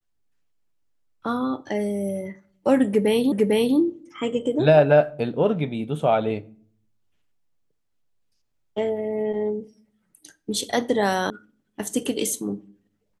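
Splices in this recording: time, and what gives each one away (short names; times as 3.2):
3.32 repeat of the last 0.45 s
11.3 sound cut off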